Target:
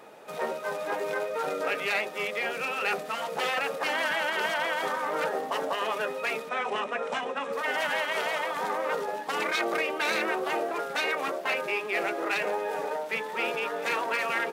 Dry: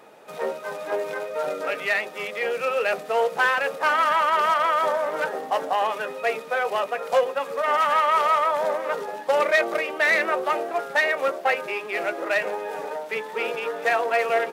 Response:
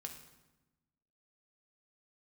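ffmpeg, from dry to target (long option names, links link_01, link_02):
-filter_complex "[0:a]asettb=1/sr,asplit=3[link_01][link_02][link_03];[link_01]atrim=end=6.494[link_04];[link_02]atrim=start=6.49:end=7.53,asetpts=PTS-STARTPTS,afade=type=in:duration=0.004:curve=qsin,afade=type=out:start_time=1.036:duration=0.004:curve=qsin,highpass=160,equalizer=frequency=230:width_type=q:width=4:gain=9,equalizer=frequency=4600:width_type=q:width=4:gain=-10,equalizer=frequency=6700:width_type=q:width=4:gain=-4,lowpass=frequency=7900:width=0.5412,lowpass=frequency=7900:width=1.3066[link_05];[link_03]atrim=start=7.526[link_06];[link_04][link_05]acrossfade=duration=0.004:curve1=hsin:curve2=qsin[link_07];[link_07][link_06]acrossfade=duration=0.004:curve1=qsin:curve2=hsin,afftfilt=real='re*lt(hypot(re,im),0.355)':imag='im*lt(hypot(re,im),0.355)':win_size=1024:overlap=0.75"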